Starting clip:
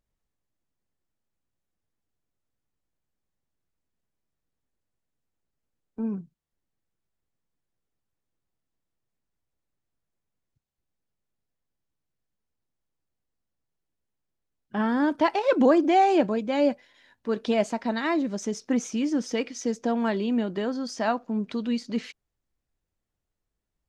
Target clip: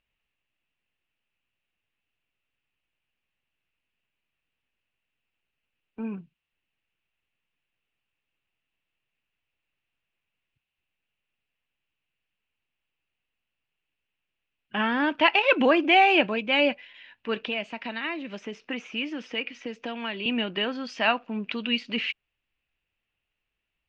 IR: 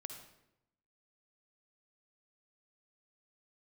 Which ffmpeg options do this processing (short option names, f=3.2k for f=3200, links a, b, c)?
-filter_complex "[0:a]tiltshelf=f=850:g=-4.5,asettb=1/sr,asplit=3[a][b][c];[a]atrim=end=17.424[d];[b]atrim=start=17.42:end=20.26,asetpts=PTS-STARTPTS,afade=t=in:d=0.004:c=qsin,afade=t=out:st=2.836:d=0.004:c=qsin,acrossover=split=310|2100[e][f][g];[e]acompressor=threshold=-40dB:ratio=4[h];[f]acompressor=threshold=-36dB:ratio=4[i];[g]acompressor=threshold=-45dB:ratio=4[j];[h][i][j]amix=inputs=3:normalize=0[k];[c]atrim=start=20.256[l];[d][k]acrossfade=d=0.004:c1=hsin:c2=qsin[m];[m][l]acrossfade=d=0.004:c1=qsin:c2=hsin,lowpass=f=2.7k:t=q:w=6.2"